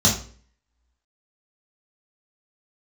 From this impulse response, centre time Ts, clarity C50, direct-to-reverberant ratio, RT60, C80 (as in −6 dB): 26 ms, 7.0 dB, −5.5 dB, 0.45 s, 12.0 dB